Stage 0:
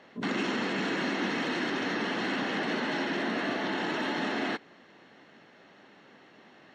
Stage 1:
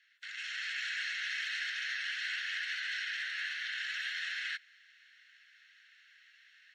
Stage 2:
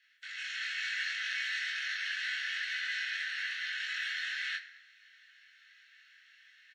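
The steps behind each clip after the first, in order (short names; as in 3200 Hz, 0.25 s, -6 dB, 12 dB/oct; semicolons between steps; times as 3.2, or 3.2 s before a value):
steep high-pass 1500 Hz 72 dB/oct; AGC gain up to 7.5 dB; gain -8.5 dB
doubler 22 ms -3 dB; on a send at -6 dB: reverb RT60 1.0 s, pre-delay 3 ms; on the sum: gain -1.5 dB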